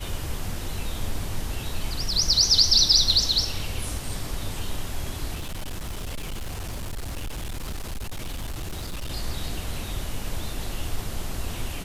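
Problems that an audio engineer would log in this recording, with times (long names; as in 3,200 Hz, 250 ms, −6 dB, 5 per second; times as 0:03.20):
0:05.35–0:09.11: clipping −28 dBFS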